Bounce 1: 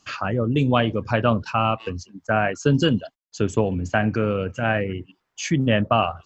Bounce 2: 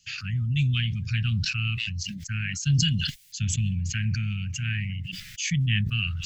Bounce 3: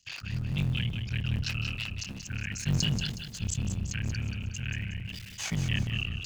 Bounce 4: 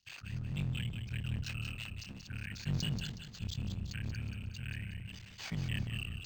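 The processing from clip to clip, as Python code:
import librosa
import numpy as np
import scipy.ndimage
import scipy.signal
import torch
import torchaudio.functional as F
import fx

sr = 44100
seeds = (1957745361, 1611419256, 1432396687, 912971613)

y1 = scipy.signal.sosfilt(scipy.signal.cheby2(4, 60, [370.0, 940.0], 'bandstop', fs=sr, output='sos'), x)
y1 = fx.sustainer(y1, sr, db_per_s=28.0)
y2 = fx.cycle_switch(y1, sr, every=3, mode='muted')
y2 = fx.echo_feedback(y2, sr, ms=183, feedback_pct=41, wet_db=-8)
y2 = y2 * librosa.db_to_amplitude(-4.0)
y3 = np.interp(np.arange(len(y2)), np.arange(len(y2))[::4], y2[::4])
y3 = y3 * librosa.db_to_amplitude(-7.0)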